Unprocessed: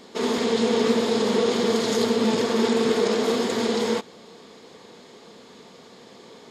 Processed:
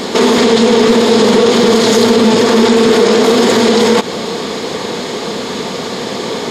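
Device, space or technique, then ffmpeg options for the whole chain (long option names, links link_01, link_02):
loud club master: -af "acompressor=threshold=-27dB:ratio=2,asoftclip=type=hard:threshold=-19.5dB,alimiter=level_in=28dB:limit=-1dB:release=50:level=0:latency=1,volume=-1dB"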